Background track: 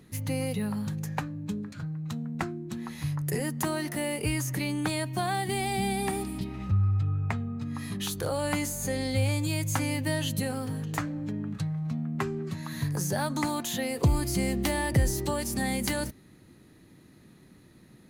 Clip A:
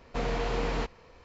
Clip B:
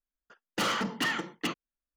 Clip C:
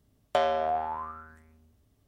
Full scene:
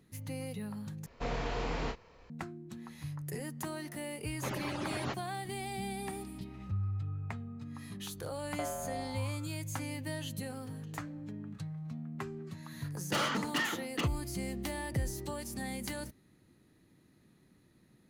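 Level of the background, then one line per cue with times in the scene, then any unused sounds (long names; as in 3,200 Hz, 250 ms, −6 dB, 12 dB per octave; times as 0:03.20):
background track −10 dB
0:01.06: overwrite with A −5 dB + double-tracking delay 31 ms −6 dB
0:04.28: mix in A −1 dB + harmonic-percussive split with one part muted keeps percussive
0:08.24: mix in C −12 dB + high-frequency loss of the air 340 metres
0:12.54: mix in B −3.5 dB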